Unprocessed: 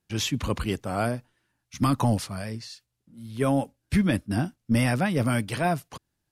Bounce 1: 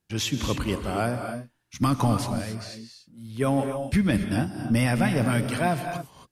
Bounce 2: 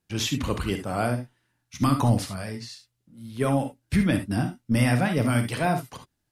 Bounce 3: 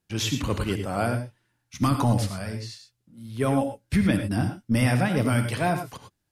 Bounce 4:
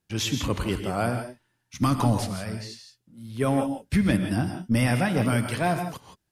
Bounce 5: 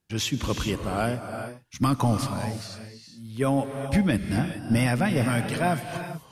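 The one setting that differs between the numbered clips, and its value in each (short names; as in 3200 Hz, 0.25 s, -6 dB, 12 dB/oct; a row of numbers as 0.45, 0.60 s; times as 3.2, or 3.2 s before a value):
non-linear reverb, gate: 300, 90, 130, 190, 450 ms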